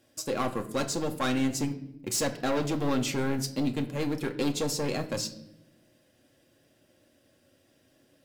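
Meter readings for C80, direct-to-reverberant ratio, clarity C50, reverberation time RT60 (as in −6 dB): 16.0 dB, 4.5 dB, 13.5 dB, non-exponential decay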